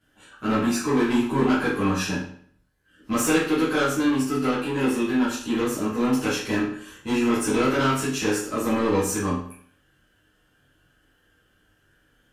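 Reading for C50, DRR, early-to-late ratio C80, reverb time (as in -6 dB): 4.0 dB, -11.5 dB, 7.5 dB, 0.55 s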